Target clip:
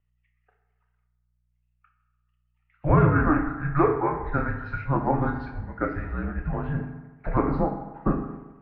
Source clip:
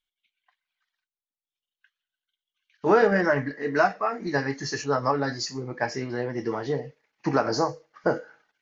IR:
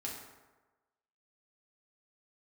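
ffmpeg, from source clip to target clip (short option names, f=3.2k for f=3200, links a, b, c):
-filter_complex "[0:a]aeval=exprs='val(0)+0.001*(sin(2*PI*60*n/s)+sin(2*PI*2*60*n/s)/2+sin(2*PI*3*60*n/s)/3+sin(2*PI*4*60*n/s)/4+sin(2*PI*5*60*n/s)/5)':c=same,highpass=f=220:t=q:w=0.5412,highpass=f=220:t=q:w=1.307,lowpass=f=2.7k:t=q:w=0.5176,lowpass=f=2.7k:t=q:w=0.7071,lowpass=f=2.7k:t=q:w=1.932,afreqshift=-300,asplit=2[a][b];[1:a]atrim=start_sample=2205,adelay=29[c];[b][c]afir=irnorm=-1:irlink=0,volume=-4.5dB[d];[a][d]amix=inputs=2:normalize=0"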